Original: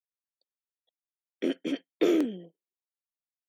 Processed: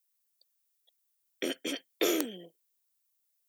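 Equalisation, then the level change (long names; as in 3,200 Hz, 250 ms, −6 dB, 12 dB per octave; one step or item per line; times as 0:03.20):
RIAA equalisation recording
dynamic equaliser 2,400 Hz, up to −4 dB, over −43 dBFS, Q 0.76
dynamic equaliser 300 Hz, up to −6 dB, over −40 dBFS, Q 0.8
+3.5 dB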